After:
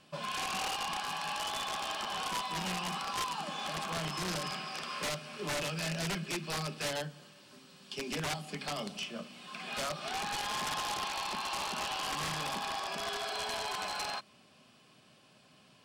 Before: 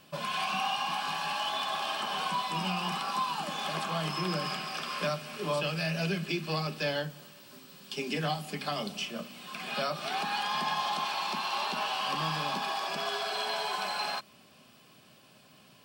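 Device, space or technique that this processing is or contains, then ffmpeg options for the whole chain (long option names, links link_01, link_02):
overflowing digital effects unit: -af "aeval=exprs='(mod(16.8*val(0)+1,2)-1)/16.8':channel_layout=same,lowpass=10000,volume=-3.5dB"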